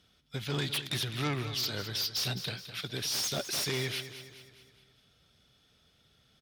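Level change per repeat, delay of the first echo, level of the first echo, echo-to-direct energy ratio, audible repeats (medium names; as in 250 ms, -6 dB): -6.0 dB, 209 ms, -12.0 dB, -11.0 dB, 4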